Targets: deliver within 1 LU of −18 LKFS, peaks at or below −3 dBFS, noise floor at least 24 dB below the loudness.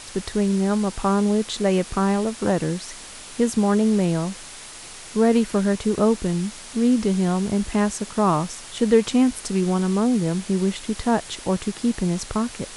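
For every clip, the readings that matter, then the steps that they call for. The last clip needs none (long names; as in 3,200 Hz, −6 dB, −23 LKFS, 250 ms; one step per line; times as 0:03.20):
background noise floor −40 dBFS; target noise floor −46 dBFS; integrated loudness −22.0 LKFS; sample peak −5.0 dBFS; target loudness −18.0 LKFS
→ broadband denoise 6 dB, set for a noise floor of −40 dBFS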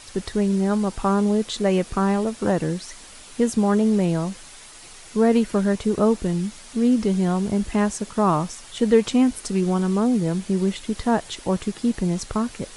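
background noise floor −44 dBFS; target noise floor −46 dBFS
→ broadband denoise 6 dB, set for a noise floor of −44 dBFS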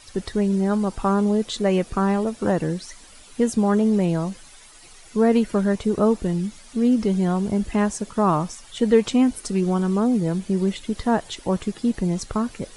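background noise floor −47 dBFS; integrated loudness −22.0 LKFS; sample peak −5.0 dBFS; target loudness −18.0 LKFS
→ level +4 dB
brickwall limiter −3 dBFS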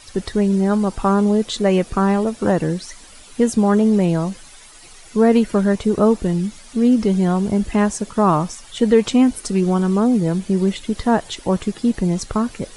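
integrated loudness −18.5 LKFS; sample peak −3.0 dBFS; background noise floor −43 dBFS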